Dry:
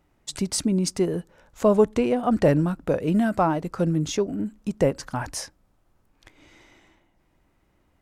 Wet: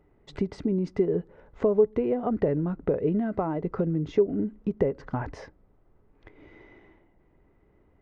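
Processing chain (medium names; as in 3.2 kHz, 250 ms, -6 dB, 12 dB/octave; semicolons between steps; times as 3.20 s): compression 6:1, threshold -27 dBFS, peak gain reduction 14 dB; tape spacing loss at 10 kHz 44 dB; small resonant body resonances 420/2000 Hz, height 10 dB, ringing for 40 ms; trim +3.5 dB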